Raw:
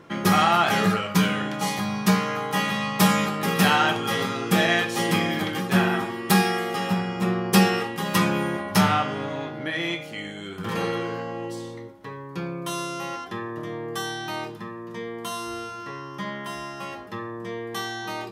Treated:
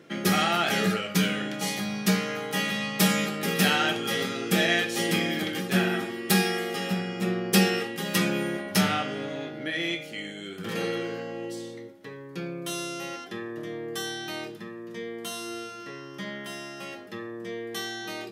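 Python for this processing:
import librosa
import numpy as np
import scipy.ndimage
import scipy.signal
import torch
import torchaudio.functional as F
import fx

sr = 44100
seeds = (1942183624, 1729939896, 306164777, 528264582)

y = scipy.signal.sosfilt(scipy.signal.bessel(2, 210.0, 'highpass', norm='mag', fs=sr, output='sos'), x)
y = fx.peak_eq(y, sr, hz=1000.0, db=-14.0, octaves=0.7)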